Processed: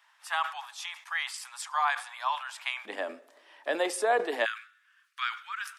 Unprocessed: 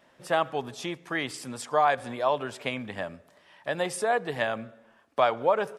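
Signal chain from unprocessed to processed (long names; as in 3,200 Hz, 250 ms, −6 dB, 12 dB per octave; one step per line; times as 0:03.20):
Butterworth high-pass 860 Hz 48 dB per octave, from 0:02.85 270 Hz, from 0:04.44 1,300 Hz
level that may fall only so fast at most 140 dB per second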